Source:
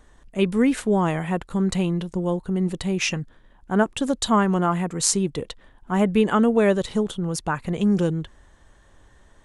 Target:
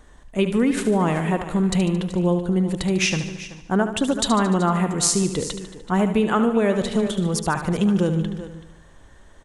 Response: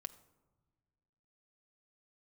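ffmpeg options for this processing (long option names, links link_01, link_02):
-filter_complex "[0:a]asplit=2[link_01][link_02];[link_02]aecho=0:1:380:0.15[link_03];[link_01][link_03]amix=inputs=2:normalize=0,acompressor=threshold=-19dB:ratio=6,asplit=2[link_04][link_05];[link_05]aecho=0:1:74|148|222|296|370|444|518:0.316|0.18|0.103|0.0586|0.0334|0.019|0.0108[link_06];[link_04][link_06]amix=inputs=2:normalize=0,volume=3.5dB"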